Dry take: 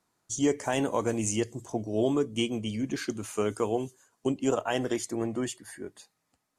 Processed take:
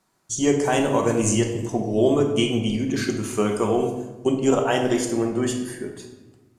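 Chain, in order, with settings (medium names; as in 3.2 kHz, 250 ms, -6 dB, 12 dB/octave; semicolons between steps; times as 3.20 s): simulated room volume 630 m³, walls mixed, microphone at 1.1 m; trim +5.5 dB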